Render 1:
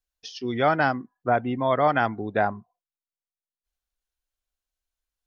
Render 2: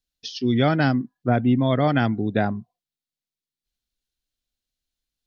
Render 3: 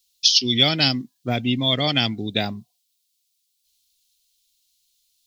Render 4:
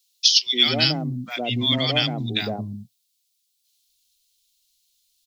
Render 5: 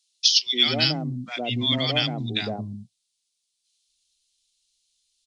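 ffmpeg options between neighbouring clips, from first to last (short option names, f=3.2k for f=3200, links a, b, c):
-af "equalizer=f=125:t=o:w=1:g=10,equalizer=f=250:t=o:w=1:g=8,equalizer=f=1k:t=o:w=1:g=-7,equalizer=f=4k:t=o:w=1:g=8"
-af "aexciter=amount=12.7:drive=4.6:freq=2.4k,volume=-4dB"
-filter_complex "[0:a]acrossover=split=250|930[a][b][c];[b]adelay=110[d];[a]adelay=230[e];[e][d][c]amix=inputs=3:normalize=0"
-af "aresample=22050,aresample=44100,volume=-2dB"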